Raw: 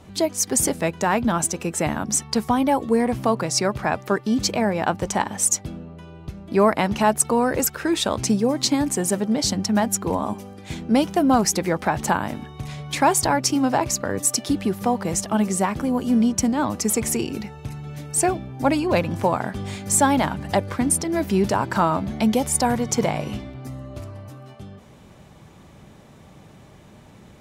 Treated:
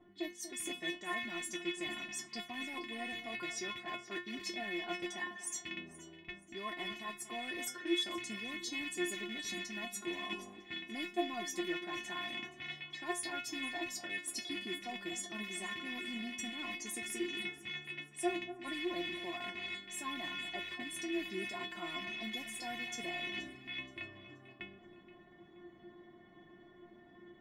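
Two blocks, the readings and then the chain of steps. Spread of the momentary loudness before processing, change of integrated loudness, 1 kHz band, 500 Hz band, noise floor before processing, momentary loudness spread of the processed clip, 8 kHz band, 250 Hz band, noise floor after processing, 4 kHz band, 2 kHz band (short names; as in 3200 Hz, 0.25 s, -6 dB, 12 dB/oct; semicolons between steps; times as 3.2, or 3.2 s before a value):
15 LU, -18.5 dB, -22.5 dB, -21.0 dB, -47 dBFS, 13 LU, -21.5 dB, -21.0 dB, -60 dBFS, -9.5 dB, -9.0 dB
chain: rattling part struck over -30 dBFS, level -13 dBFS; low-pass opened by the level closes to 1300 Hz, open at -18 dBFS; low shelf 410 Hz -11.5 dB; reverse; compressor 6:1, threshold -34 dBFS, peak gain reduction 19 dB; reverse; metallic resonator 350 Hz, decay 0.28 s, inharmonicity 0.002; small resonant body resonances 210/1900/3400 Hz, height 16 dB, ringing for 20 ms; on a send: echo with dull and thin repeats by turns 0.238 s, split 1500 Hz, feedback 57%, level -12 dB; on the sum: gain +7 dB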